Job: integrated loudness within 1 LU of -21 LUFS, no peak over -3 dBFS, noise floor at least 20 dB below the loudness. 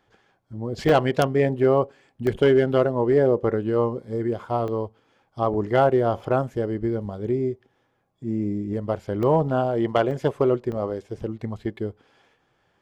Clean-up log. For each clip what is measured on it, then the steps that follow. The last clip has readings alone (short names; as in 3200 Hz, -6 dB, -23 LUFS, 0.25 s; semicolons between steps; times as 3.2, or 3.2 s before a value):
dropouts 7; longest dropout 1.9 ms; loudness -23.5 LUFS; peak -7.5 dBFS; loudness target -21.0 LUFS
-> interpolate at 0.89/2.27/4.68/6.2/9.23/10.11/10.72, 1.9 ms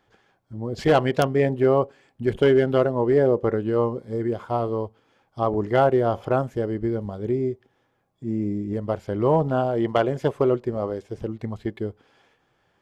dropouts 0; loudness -23.5 LUFS; peak -7.5 dBFS; loudness target -21.0 LUFS
-> gain +2.5 dB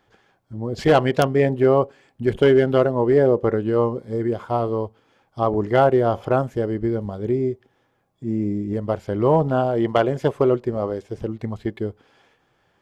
loudness -21.0 LUFS; peak -5.0 dBFS; noise floor -66 dBFS